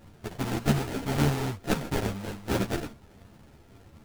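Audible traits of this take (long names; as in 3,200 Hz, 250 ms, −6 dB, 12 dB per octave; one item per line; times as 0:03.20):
a buzz of ramps at a fixed pitch in blocks of 64 samples
phaser sweep stages 4, 1 Hz, lowest notch 460–1,100 Hz
aliases and images of a low sample rate 1,100 Hz, jitter 20%
a shimmering, thickened sound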